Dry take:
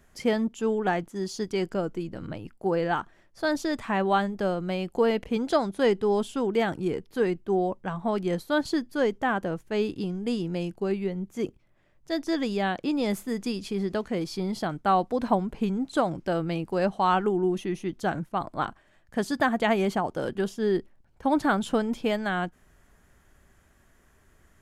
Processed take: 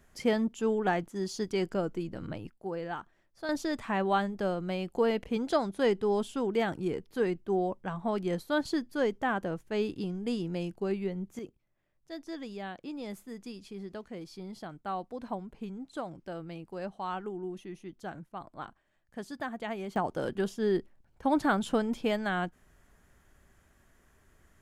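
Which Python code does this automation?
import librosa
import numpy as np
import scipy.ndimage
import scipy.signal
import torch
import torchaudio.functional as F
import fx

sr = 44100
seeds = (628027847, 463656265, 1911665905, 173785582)

y = fx.gain(x, sr, db=fx.steps((0.0, -2.5), (2.5, -10.5), (3.49, -4.0), (11.39, -13.0), (19.96, -3.0)))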